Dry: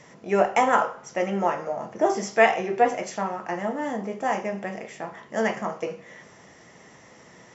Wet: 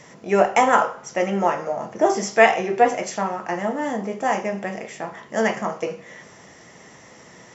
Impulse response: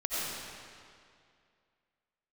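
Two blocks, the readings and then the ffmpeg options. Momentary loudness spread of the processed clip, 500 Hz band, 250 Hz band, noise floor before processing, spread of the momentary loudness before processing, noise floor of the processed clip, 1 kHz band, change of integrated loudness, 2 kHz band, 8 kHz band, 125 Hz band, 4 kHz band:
14 LU, +3.5 dB, +3.5 dB, -51 dBFS, 14 LU, -47 dBFS, +3.5 dB, +3.5 dB, +4.0 dB, no reading, +3.5 dB, +5.0 dB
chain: -af "highshelf=f=5600:g=4.5,volume=1.5"

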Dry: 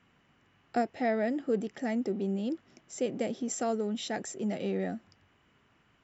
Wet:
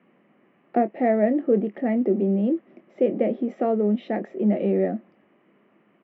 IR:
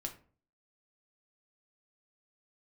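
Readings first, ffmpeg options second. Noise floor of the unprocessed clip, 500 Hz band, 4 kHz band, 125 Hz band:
-68 dBFS, +10.0 dB, no reading, +9.5 dB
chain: -filter_complex "[0:a]acontrast=51,acrusher=bits=8:mode=log:mix=0:aa=0.000001,highpass=f=180:w=0.5412,highpass=f=180:w=1.3066,equalizer=f=200:t=q:w=4:g=6,equalizer=f=350:t=q:w=4:g=7,equalizer=f=570:t=q:w=4:g=7,equalizer=f=920:t=q:w=4:g=-4,equalizer=f=1500:t=q:w=4:g=-9,lowpass=f=2200:w=0.5412,lowpass=f=2200:w=1.3066,asplit=2[s0][s1];[s1]adelay=24,volume=0.251[s2];[s0][s2]amix=inputs=2:normalize=0"

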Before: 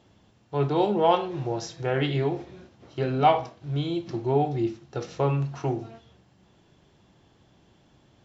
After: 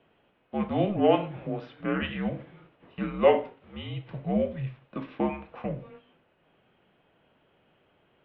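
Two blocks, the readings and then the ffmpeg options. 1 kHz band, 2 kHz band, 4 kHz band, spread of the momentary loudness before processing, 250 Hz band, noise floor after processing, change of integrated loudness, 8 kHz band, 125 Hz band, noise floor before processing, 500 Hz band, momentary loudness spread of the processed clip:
-7.0 dB, -0.5 dB, -5.0 dB, 13 LU, -0.5 dB, -68 dBFS, -2.5 dB, no reading, -7.0 dB, -61 dBFS, -1.5 dB, 17 LU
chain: -af "highpass=f=400:t=q:w=0.5412,highpass=f=400:t=q:w=1.307,lowpass=f=3200:t=q:w=0.5176,lowpass=f=3200:t=q:w=0.7071,lowpass=f=3200:t=q:w=1.932,afreqshift=-210"

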